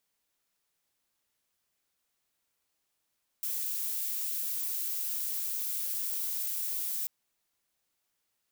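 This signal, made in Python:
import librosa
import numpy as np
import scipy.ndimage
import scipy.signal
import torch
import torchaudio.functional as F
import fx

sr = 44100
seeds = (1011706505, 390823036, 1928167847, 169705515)

y = fx.noise_colour(sr, seeds[0], length_s=3.64, colour='violet', level_db=-33.5)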